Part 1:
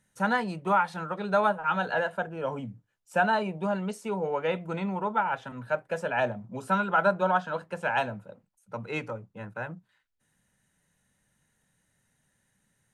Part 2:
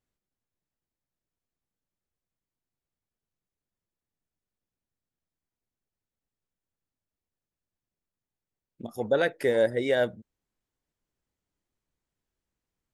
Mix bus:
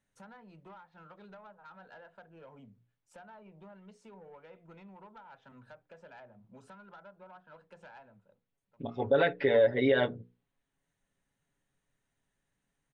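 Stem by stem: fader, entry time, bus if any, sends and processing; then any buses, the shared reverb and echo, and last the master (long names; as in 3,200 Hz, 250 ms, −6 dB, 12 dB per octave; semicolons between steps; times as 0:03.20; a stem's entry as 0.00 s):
−12.0 dB, 0.00 s, no send, treble cut that deepens with the level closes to 1,800 Hz, closed at −22 dBFS; downward compressor 10 to 1, threshold −35 dBFS, peak gain reduction 16.5 dB; soft clipping −33 dBFS, distortion −16 dB; automatic ducking −17 dB, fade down 0.85 s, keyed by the second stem
0.0 dB, 0.00 s, no send, Butterworth low-pass 3,800 Hz 36 dB per octave; comb filter 7.2 ms, depth 100%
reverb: not used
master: low-pass filter 8,700 Hz; mains-hum notches 60/120/180/240/300/360/420/480 Hz; brickwall limiter −16 dBFS, peak gain reduction 8.5 dB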